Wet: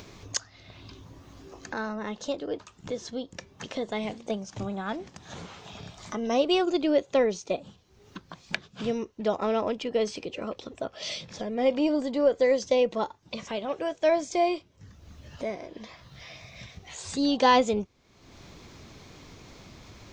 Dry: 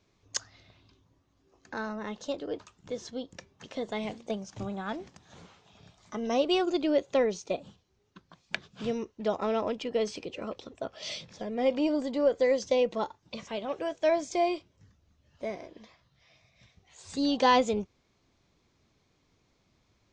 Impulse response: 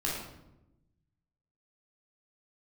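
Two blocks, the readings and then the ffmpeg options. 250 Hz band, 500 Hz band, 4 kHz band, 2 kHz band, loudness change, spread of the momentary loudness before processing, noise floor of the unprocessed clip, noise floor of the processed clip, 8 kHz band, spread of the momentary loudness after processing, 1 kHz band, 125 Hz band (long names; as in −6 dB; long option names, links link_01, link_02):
+2.5 dB, +2.5 dB, +3.0 dB, +3.0 dB, +2.5 dB, 15 LU, −71 dBFS, −60 dBFS, +3.5 dB, 20 LU, +2.5 dB, +4.5 dB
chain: -af "acompressor=mode=upward:threshold=-34dB:ratio=2.5,volume=2.5dB"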